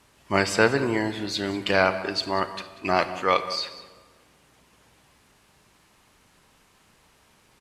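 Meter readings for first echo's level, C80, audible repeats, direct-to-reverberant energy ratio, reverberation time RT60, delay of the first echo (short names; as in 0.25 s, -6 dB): -17.0 dB, 12.5 dB, 1, 11.0 dB, 1.5 s, 0.189 s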